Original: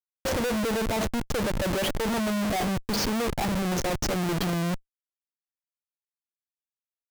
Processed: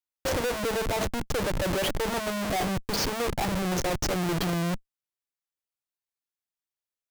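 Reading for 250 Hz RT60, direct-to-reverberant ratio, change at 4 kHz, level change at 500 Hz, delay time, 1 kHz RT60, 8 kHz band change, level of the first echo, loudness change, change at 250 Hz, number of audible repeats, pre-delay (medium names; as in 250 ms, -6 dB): no reverb, no reverb, 0.0 dB, 0.0 dB, no echo, no reverb, 0.0 dB, no echo, -1.0 dB, -3.5 dB, no echo, no reverb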